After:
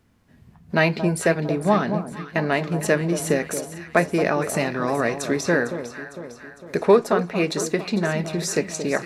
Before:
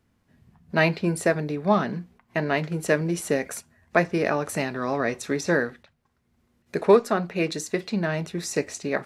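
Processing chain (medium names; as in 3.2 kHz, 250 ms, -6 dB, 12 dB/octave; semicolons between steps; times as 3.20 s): in parallel at 0 dB: compression, threshold -30 dBFS, peak gain reduction 17.5 dB; on the sum: echo whose repeats swap between lows and highs 227 ms, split 1.1 kHz, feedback 71%, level -9.5 dB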